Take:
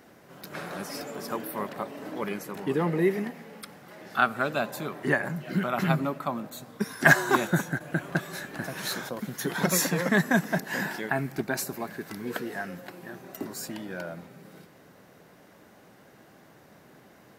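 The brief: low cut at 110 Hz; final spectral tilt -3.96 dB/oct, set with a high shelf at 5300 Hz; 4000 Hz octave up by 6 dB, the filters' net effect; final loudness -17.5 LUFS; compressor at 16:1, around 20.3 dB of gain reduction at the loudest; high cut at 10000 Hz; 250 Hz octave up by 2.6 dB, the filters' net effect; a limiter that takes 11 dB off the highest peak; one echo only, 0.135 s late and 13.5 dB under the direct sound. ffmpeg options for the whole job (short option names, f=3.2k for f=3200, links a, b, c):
-af "highpass=110,lowpass=10k,equalizer=f=250:t=o:g=4,equalizer=f=4k:t=o:g=5,highshelf=f=5.3k:g=5.5,acompressor=threshold=-32dB:ratio=16,alimiter=level_in=6dB:limit=-24dB:level=0:latency=1,volume=-6dB,aecho=1:1:135:0.211,volume=22.5dB"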